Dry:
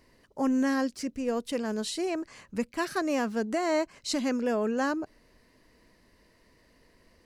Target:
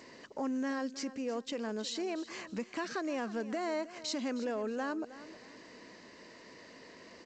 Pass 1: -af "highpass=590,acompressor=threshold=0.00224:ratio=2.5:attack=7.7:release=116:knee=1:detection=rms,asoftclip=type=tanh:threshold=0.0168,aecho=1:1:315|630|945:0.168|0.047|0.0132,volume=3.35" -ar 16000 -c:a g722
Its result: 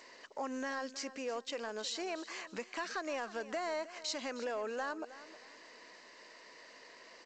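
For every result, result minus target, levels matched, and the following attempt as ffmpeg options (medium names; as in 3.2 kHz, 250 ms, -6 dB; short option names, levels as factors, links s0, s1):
saturation: distortion +19 dB; 250 Hz band -6.5 dB
-af "highpass=590,acompressor=threshold=0.00224:ratio=2.5:attack=7.7:release=116:knee=1:detection=rms,asoftclip=type=tanh:threshold=0.0473,aecho=1:1:315|630|945:0.168|0.047|0.0132,volume=3.35" -ar 16000 -c:a g722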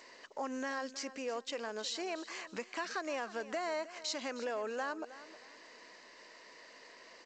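250 Hz band -6.5 dB
-af "highpass=210,acompressor=threshold=0.00224:ratio=2.5:attack=7.7:release=116:knee=1:detection=rms,asoftclip=type=tanh:threshold=0.0473,aecho=1:1:315|630|945:0.168|0.047|0.0132,volume=3.35" -ar 16000 -c:a g722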